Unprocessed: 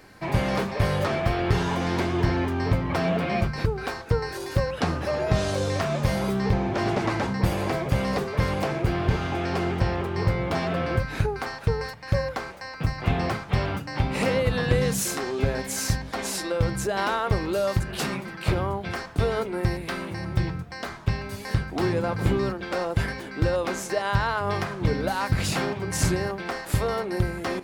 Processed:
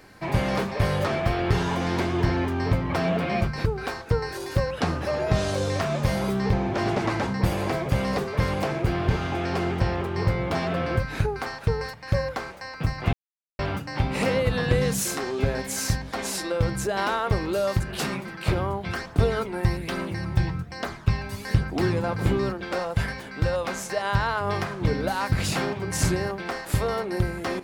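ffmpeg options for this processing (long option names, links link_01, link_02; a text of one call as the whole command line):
ffmpeg -i in.wav -filter_complex "[0:a]asplit=3[link_01][link_02][link_03];[link_01]afade=type=out:start_time=18.81:duration=0.02[link_04];[link_02]aphaser=in_gain=1:out_gain=1:delay=1.3:decay=0.34:speed=1.2:type=triangular,afade=type=in:start_time=18.81:duration=0.02,afade=type=out:start_time=22.05:duration=0.02[link_05];[link_03]afade=type=in:start_time=22.05:duration=0.02[link_06];[link_04][link_05][link_06]amix=inputs=3:normalize=0,asettb=1/sr,asplit=3[link_07][link_08][link_09];[link_07]atrim=end=22.794[link_10];[link_08]atrim=start=22.79:end=24.03,asetpts=PTS-STARTPTS,afade=type=in:duration=0.004:curve=qsin,afade=type=out:start_time=1.236:duration=0.004:curve=qsin,equalizer=frequency=340:width_type=o:width=0.57:gain=-8.5[link_11];[link_09]atrim=start=24.026[link_12];[link_10][link_11]acrossfade=duration=0.004:curve1=hsin:curve2=qsin[link_13];[link_13][link_12]acrossfade=duration=0.004:curve1=qsin:curve2=hsin,asplit=3[link_14][link_15][link_16];[link_14]atrim=end=13.13,asetpts=PTS-STARTPTS,afade=type=out:start_time=13.126:duration=0.004:curve=hsin[link_17];[link_15]atrim=start=13.13:end=13.59,asetpts=PTS-STARTPTS,volume=0[link_18];[link_16]atrim=start=13.59,asetpts=PTS-STARTPTS,afade=type=in:duration=0.004:curve=hsin[link_19];[link_17][link_18][link_19]concat=n=3:v=0:a=1" out.wav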